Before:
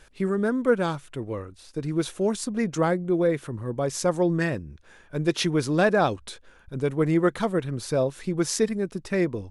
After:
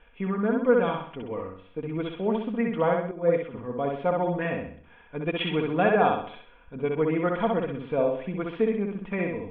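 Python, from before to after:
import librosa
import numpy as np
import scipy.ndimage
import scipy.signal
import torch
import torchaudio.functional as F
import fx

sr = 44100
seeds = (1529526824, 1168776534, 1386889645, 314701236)

p1 = scipy.signal.sosfilt(scipy.signal.cheby1(6, 6, 3400.0, 'lowpass', fs=sr, output='sos'), x)
p2 = p1 + 0.54 * np.pad(p1, (int(4.2 * sr / 1000.0), 0))[:len(p1)]
p3 = p2 + fx.echo_feedback(p2, sr, ms=64, feedback_pct=43, wet_db=-3, dry=0)
y = fx.band_widen(p3, sr, depth_pct=100, at=(3.11, 3.54))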